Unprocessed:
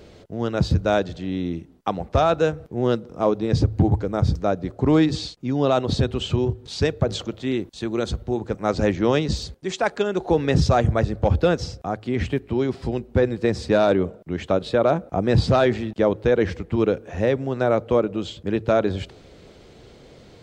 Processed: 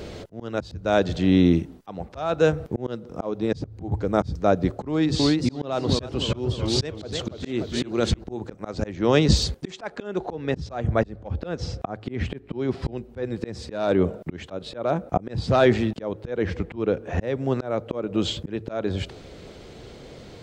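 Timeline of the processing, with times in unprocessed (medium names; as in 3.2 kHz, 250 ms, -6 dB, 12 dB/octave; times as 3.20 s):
4.90–8.24 s: modulated delay 298 ms, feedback 51%, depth 162 cents, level -9.5 dB
9.70–12.98 s: low-pass 3.8 kHz 6 dB/octave
16.41–17.22 s: treble shelf 4.9 kHz -9 dB
whole clip: gain riding within 4 dB 0.5 s; slow attack 435 ms; trim +5.5 dB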